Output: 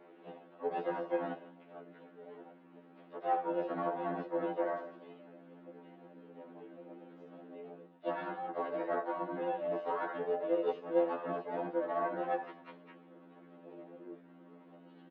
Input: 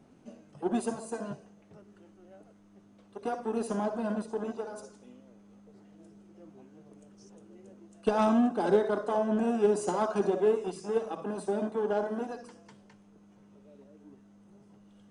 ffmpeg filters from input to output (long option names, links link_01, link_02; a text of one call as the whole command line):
ffmpeg -i in.wav -filter_complex "[0:a]areverse,acompressor=threshold=-35dB:ratio=16,areverse,highpass=frequency=260:width_type=q:width=0.5412,highpass=frequency=260:width_type=q:width=1.307,lowpass=frequency=2900:width_type=q:width=0.5176,lowpass=frequency=2900:width_type=q:width=0.7071,lowpass=frequency=2900:width_type=q:width=1.932,afreqshift=61,asplit=4[link_01][link_02][link_03][link_04];[link_02]asetrate=29433,aresample=44100,atempo=1.49831,volume=-8dB[link_05];[link_03]asetrate=55563,aresample=44100,atempo=0.793701,volume=-7dB[link_06];[link_04]asetrate=58866,aresample=44100,atempo=0.749154,volume=-17dB[link_07];[link_01][link_05][link_06][link_07]amix=inputs=4:normalize=0,aecho=1:1:6.3:0.43,afftfilt=real='re*2*eq(mod(b,4),0)':imag='im*2*eq(mod(b,4),0)':win_size=2048:overlap=0.75,volume=5.5dB" out.wav